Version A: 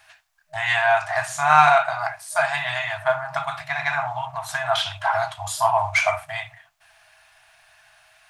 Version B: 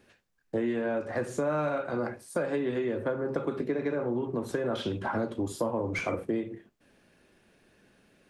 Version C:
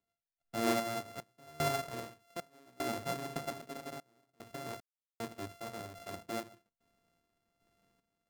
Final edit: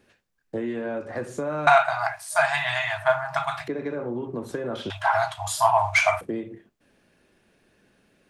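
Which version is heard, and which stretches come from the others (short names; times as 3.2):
B
1.67–3.68 from A
4.9–6.21 from A
not used: C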